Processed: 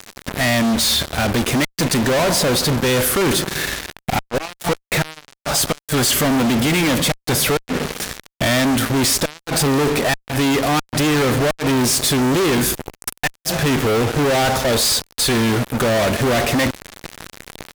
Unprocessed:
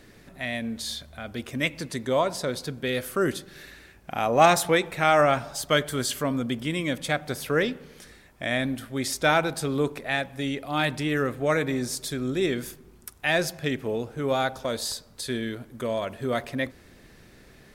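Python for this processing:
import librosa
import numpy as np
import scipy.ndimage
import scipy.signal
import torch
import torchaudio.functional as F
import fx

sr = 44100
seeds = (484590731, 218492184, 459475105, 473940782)

y = fx.gate_flip(x, sr, shuts_db=-12.0, range_db=-34)
y = fx.fuzz(y, sr, gain_db=51.0, gate_db=-45.0)
y = y * 10.0 ** (-2.0 / 20.0)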